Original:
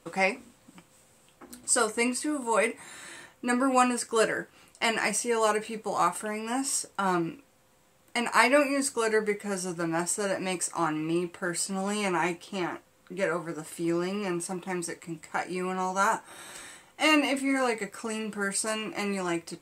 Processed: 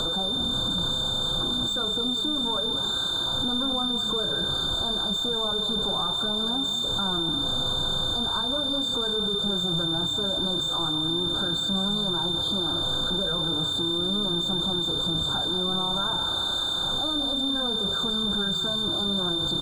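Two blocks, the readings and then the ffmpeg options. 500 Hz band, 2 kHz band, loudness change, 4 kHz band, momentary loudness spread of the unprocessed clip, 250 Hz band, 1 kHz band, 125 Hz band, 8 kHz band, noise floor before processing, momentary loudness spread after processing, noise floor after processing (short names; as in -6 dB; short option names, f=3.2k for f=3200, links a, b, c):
-3.5 dB, -9.5 dB, +4.0 dB, +18.0 dB, 12 LU, +0.5 dB, -4.5 dB, +7.0 dB, -7.5 dB, -62 dBFS, 0 LU, -28 dBFS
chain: -filter_complex "[0:a]aeval=exprs='val(0)+0.5*0.106*sgn(val(0))':c=same,lowpass=12k,acrossover=split=160[a][b];[b]acompressor=threshold=-32dB:ratio=4[c];[a][c]amix=inputs=2:normalize=0,aeval=exprs='val(0)+0.0631*sin(2*PI*3600*n/s)':c=same,adynamicsmooth=sensitivity=2.5:basefreq=3.8k,asplit=2[d][e];[e]asplit=6[f][g][h][i][j][k];[f]adelay=193,afreqshift=-32,volume=-10dB[l];[g]adelay=386,afreqshift=-64,volume=-15dB[m];[h]adelay=579,afreqshift=-96,volume=-20.1dB[n];[i]adelay=772,afreqshift=-128,volume=-25.1dB[o];[j]adelay=965,afreqshift=-160,volume=-30.1dB[p];[k]adelay=1158,afreqshift=-192,volume=-35.2dB[q];[l][m][n][o][p][q]amix=inputs=6:normalize=0[r];[d][r]amix=inputs=2:normalize=0,afftfilt=real='re*eq(mod(floor(b*sr/1024/1600),2),0)':imag='im*eq(mod(floor(b*sr/1024/1600),2),0)':win_size=1024:overlap=0.75"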